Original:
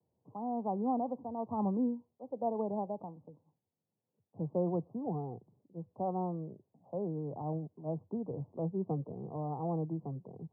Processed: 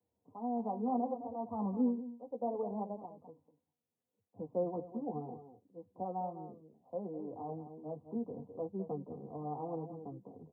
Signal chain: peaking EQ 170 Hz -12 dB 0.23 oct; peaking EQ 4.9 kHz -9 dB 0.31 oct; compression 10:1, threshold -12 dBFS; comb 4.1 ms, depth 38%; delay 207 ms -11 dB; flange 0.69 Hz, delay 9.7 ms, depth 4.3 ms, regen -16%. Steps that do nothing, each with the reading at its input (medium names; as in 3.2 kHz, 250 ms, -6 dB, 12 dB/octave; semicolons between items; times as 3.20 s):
peaking EQ 4.9 kHz: input has nothing above 1.1 kHz; compression, threshold -12 dBFS: peak at its input -22.0 dBFS